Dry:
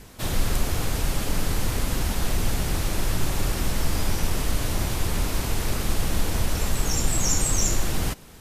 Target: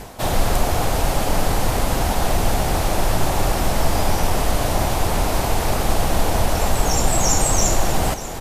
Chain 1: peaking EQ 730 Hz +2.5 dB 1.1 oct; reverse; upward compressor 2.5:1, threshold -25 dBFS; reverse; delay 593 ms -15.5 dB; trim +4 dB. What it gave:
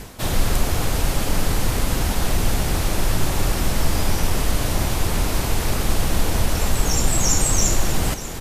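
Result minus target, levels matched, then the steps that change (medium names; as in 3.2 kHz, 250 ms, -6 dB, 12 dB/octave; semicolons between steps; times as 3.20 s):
1 kHz band -5.5 dB
change: peaking EQ 730 Hz +11.5 dB 1.1 oct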